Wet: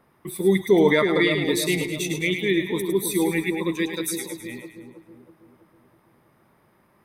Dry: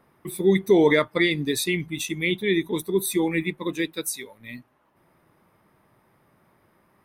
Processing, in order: split-band echo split 930 Hz, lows 0.323 s, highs 0.106 s, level -6.5 dB

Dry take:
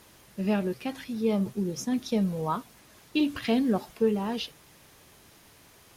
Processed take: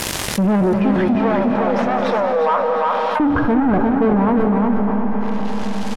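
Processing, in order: tracing distortion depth 0.18 ms; 2.35–5.21 spectral delete 1700–9800 Hz; sample leveller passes 5; 1.15–3.2 brick-wall FIR high-pass 450 Hz; reverb RT60 4.3 s, pre-delay 0.11 s, DRR 7.5 dB; treble ducked by the level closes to 1400 Hz, closed at -25 dBFS; feedback echo 0.353 s, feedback 29%, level -5.5 dB; fast leveller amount 70%; gain -1 dB

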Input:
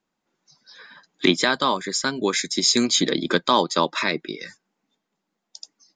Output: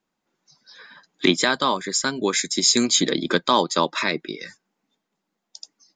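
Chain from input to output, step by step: dynamic EQ 7400 Hz, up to +6 dB, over -42 dBFS, Q 4.4

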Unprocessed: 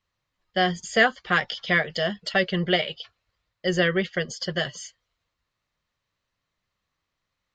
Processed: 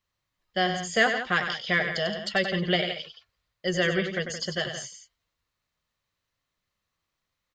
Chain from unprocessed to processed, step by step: high shelf 6600 Hz +7 dB; loudspeakers at several distances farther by 33 m -8 dB, 58 m -11 dB; gain -3.5 dB

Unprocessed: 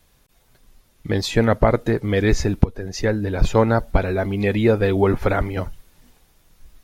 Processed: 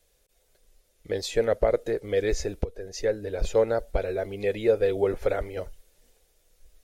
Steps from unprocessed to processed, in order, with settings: graphic EQ 125/250/500/1000/8000 Hz -10/-9/+11/-9/+5 dB; gain -8.5 dB

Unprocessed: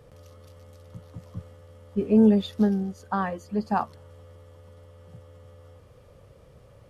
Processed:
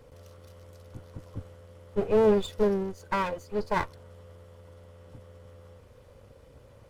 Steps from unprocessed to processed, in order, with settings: minimum comb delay 2 ms

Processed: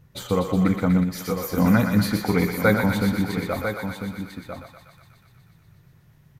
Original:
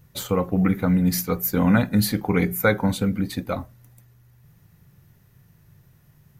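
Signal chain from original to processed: LPF 3800 Hz 6 dB/oct; thinning echo 0.122 s, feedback 79%, high-pass 710 Hz, level -5.5 dB; 1.03–1.58 compressor 6:1, threshold -23 dBFS, peak gain reduction 8 dB; echo 0.998 s -8.5 dB

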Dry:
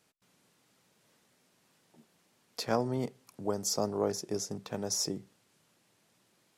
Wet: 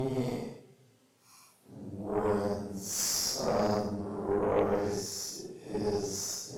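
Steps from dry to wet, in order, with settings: Paulstretch 4.3×, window 0.10 s, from 2.97; added harmonics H 6 -19 dB, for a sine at -16 dBFS

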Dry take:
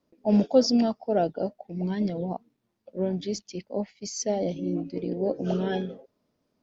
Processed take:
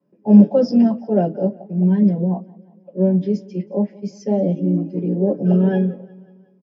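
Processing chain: feedback echo 0.181 s, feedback 58%, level -23 dB; reverb RT60 0.15 s, pre-delay 3 ms, DRR -3.5 dB; gain -14.5 dB

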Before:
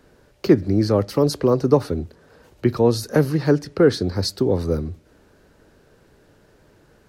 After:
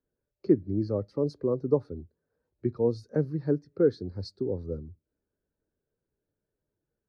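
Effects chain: LPF 8100 Hz 12 dB/oct; notch 2900 Hz, Q 9.5; spectral expander 1.5:1; gain -8.5 dB

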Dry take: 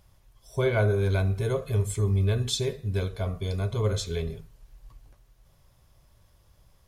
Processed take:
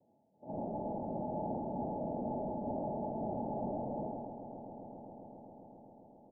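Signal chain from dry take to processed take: HPF 160 Hz; comb 6.2 ms, depth 79%; sample leveller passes 3; noise vocoder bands 1; hard clip -39 dBFS, distortion -1 dB; rippled Chebyshev low-pass 810 Hz, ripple 9 dB; on a send: swelling echo 0.145 s, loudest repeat 5, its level -16 dB; on the sum: speed mistake 44.1 kHz file played as 48 kHz; sustainer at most 24 dB/s; gain +15.5 dB

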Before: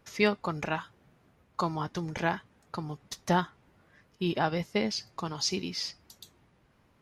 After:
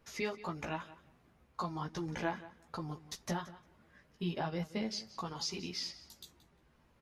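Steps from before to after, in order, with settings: compressor 2.5:1, threshold -34 dBFS, peak gain reduction 10 dB; chorus voices 6, 0.97 Hz, delay 15 ms, depth 3 ms; on a send: feedback echo 0.176 s, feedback 15%, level -17 dB

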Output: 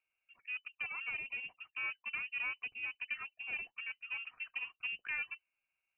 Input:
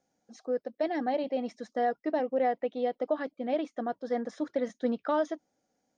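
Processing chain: one diode to ground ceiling -26 dBFS; inverted band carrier 3000 Hz; air absorption 270 m; gain -6 dB

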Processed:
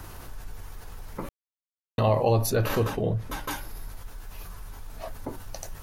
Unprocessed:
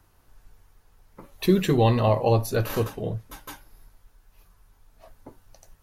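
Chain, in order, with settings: 1.29–1.98 mute; 2.5–3.51 high shelf 5000 Hz -7.5 dB; fast leveller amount 50%; gain -2.5 dB

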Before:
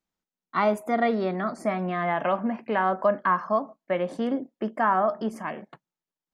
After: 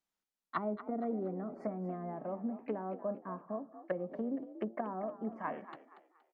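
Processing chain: treble ducked by the level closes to 350 Hz, closed at -24 dBFS; low shelf 350 Hz -9 dB; frequency-shifting echo 0.235 s, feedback 36%, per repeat +53 Hz, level -13.5 dB; gain -2.5 dB

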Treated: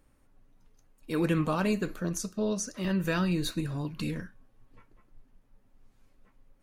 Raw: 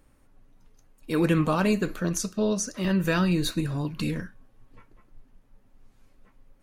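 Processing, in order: 1.94–2.47 bell 2700 Hz -4 dB 1.7 oct; gain -4.5 dB

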